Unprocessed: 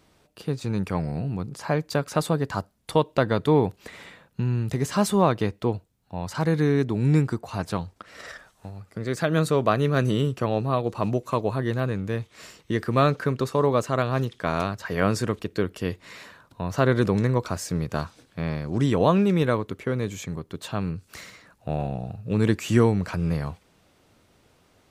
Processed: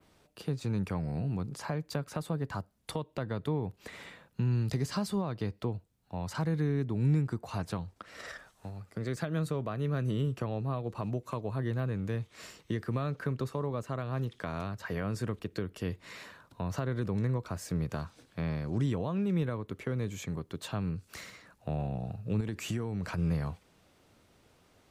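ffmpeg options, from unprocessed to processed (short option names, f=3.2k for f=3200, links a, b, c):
-filter_complex "[0:a]asettb=1/sr,asplit=3[a][b][c];[a]atrim=end=4.514[d];[b]atrim=start=4.51:end=5.62,asetpts=PTS-STARTPTS,afade=t=in:d=0.004:c=qsin,afade=t=out:st=1.106:d=0.004:c=qsin,equalizer=f=4.7k:t=o:w=0.37:g=9.5[e];[c]atrim=start=5.616[f];[d][e]acrossfade=d=0.004:c1=hsin:c2=qsin[g];[g][f]acrossfade=d=0.004:c1=qsin:c2=hsin,asettb=1/sr,asplit=3[h][i][j];[h]atrim=end=22.404[k];[i]atrim=start=22.4:end=23.18,asetpts=PTS-STARTPTS,afade=t=in:d=0.004:c=qsin,afade=t=out:st=0.776:d=0.004:c=qsin,acompressor=threshold=-24dB:ratio=6:attack=3.2:release=140:knee=1:detection=peak[l];[j]atrim=start=23.176[m];[k][l]acrossfade=d=0.004:c1=hsin:c2=qsin[n];[n][m]acrossfade=d=0.004:c1=qsin:c2=hsin,adynamicequalizer=threshold=0.00447:dfrequency=5900:dqfactor=0.82:tfrequency=5900:tqfactor=0.82:attack=5:release=100:ratio=0.375:range=2.5:mode=cutabove:tftype=bell,alimiter=limit=-13.5dB:level=0:latency=1:release=299,acrossover=split=190[o][p];[p]acompressor=threshold=-33dB:ratio=2.5[q];[o][q]amix=inputs=2:normalize=0,volume=-3.5dB"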